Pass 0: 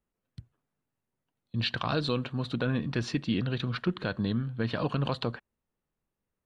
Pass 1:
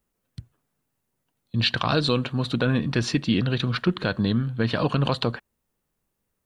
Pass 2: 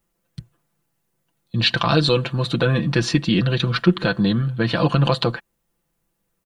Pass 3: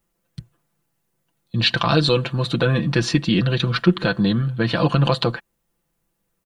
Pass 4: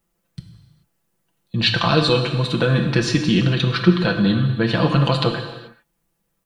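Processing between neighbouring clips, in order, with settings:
high shelf 6400 Hz +8 dB; gain +6.5 dB
comb 5.9 ms; gain +3 dB
nothing audible
non-linear reverb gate 0.46 s falling, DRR 4.5 dB

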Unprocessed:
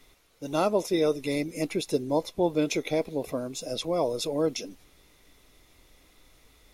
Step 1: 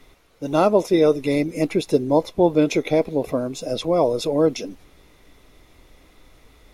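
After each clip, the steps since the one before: high shelf 2900 Hz -9 dB; gain +8.5 dB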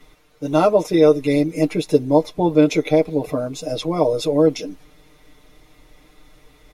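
comb 6.6 ms, depth 88%; gain -1.5 dB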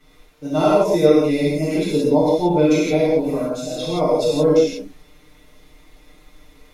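non-linear reverb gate 0.2 s flat, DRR -8 dB; gain -7.5 dB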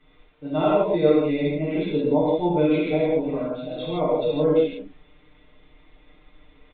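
downsampling 8000 Hz; gain -4.5 dB

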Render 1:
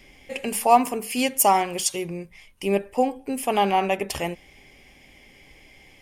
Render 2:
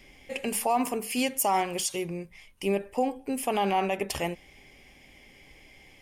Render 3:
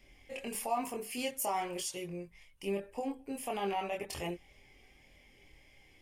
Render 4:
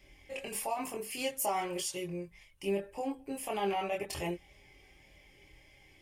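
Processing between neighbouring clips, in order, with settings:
limiter -13.5 dBFS, peak gain reduction 10 dB; gain -2.5 dB
chorus voices 6, 0.43 Hz, delay 24 ms, depth 1.8 ms; gain -5.5 dB
notch comb 240 Hz; gain +3 dB

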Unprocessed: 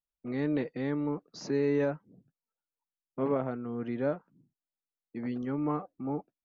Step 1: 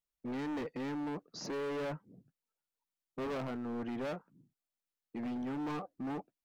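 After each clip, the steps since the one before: overloaded stage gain 35.5 dB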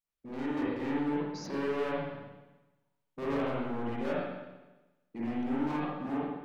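AGC gain up to 3.5 dB; reverb RT60 1.1 s, pre-delay 43 ms, DRR -7 dB; gain -5.5 dB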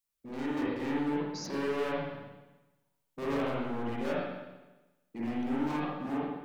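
high shelf 4800 Hz +9 dB

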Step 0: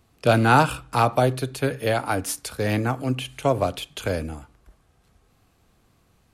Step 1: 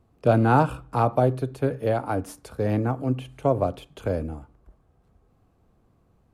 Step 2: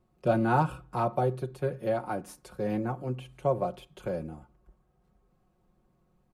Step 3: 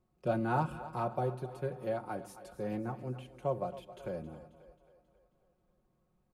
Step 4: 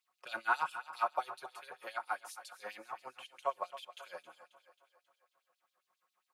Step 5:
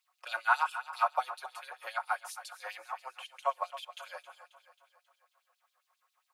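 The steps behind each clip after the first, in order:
EQ curve 520 Hz 0 dB, 1100 Hz -4 dB, 1900 Hz -11 dB, 4100 Hz -15 dB
comb 5.5 ms, depth 76%; gain -7.5 dB
split-band echo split 330 Hz, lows 0.134 s, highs 0.269 s, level -14 dB; gain -6.5 dB
LFO high-pass sine 7.4 Hz 980–4100 Hz; gain +3.5 dB
HPF 610 Hz 24 dB/oct; gain +5 dB

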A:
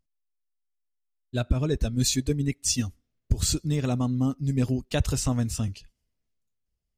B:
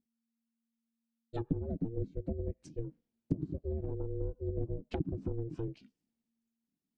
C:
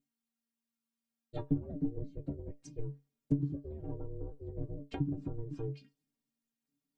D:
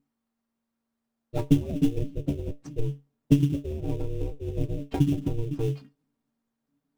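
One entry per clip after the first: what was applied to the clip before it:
ring modulator 230 Hz; treble ducked by the level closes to 340 Hz, closed at -24 dBFS; gain -6 dB
metallic resonator 140 Hz, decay 0.21 s, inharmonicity 0.008; gain +10 dB
in parallel at -4 dB: sample-rate reducer 3100 Hz, jitter 20%; on the sum: mismatched tape noise reduction decoder only; gain +7 dB

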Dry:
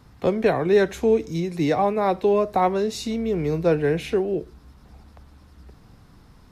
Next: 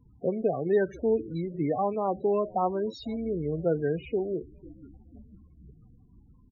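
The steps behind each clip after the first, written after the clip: frequency-shifting echo 0.493 s, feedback 59%, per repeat -81 Hz, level -21.5 dB; loudest bins only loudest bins 16; gain -6.5 dB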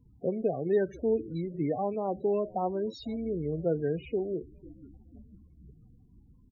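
bell 1200 Hz -10 dB 0.8 oct; gain -1.5 dB

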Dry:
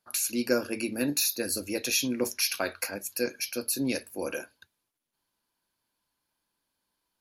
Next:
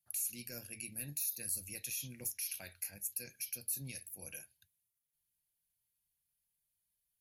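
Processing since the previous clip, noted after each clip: passive tone stack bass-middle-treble 5-5-5; limiter -31 dBFS, peak gain reduction 11 dB; EQ curve 160 Hz 0 dB, 260 Hz -16 dB, 780 Hz -13 dB, 1200 Hz -28 dB, 1900 Hz -12 dB, 3100 Hz -13 dB, 4500 Hz -17 dB, 9000 Hz -5 dB, 14000 Hz -2 dB; gain +9.5 dB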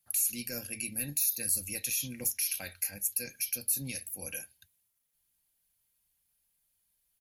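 comb 3.8 ms, depth 32%; gain +8 dB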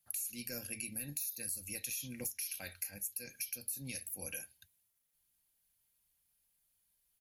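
compressor 5:1, threshold -36 dBFS, peak gain reduction 10.5 dB; gain -1.5 dB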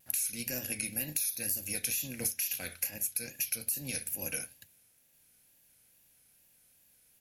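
per-bin compression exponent 0.6; wow and flutter 100 cents; upward expander 1.5:1, over -57 dBFS; gain +5.5 dB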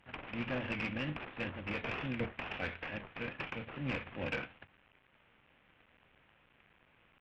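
CVSD 16 kbps; tube stage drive 32 dB, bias 0.3; gain +6.5 dB

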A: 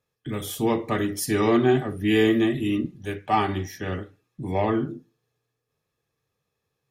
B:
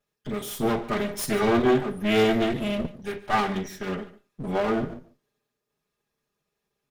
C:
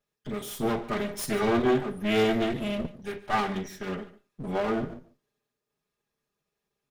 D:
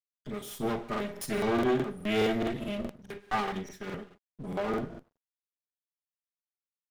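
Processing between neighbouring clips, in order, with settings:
minimum comb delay 4.9 ms; echo 0.145 s -18 dB
bell 15000 Hz -2 dB 0.3 oct; gain -3 dB
crossover distortion -56.5 dBFS; crackling interface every 0.21 s, samples 2048, repeat, from 0.91; gain -3.5 dB

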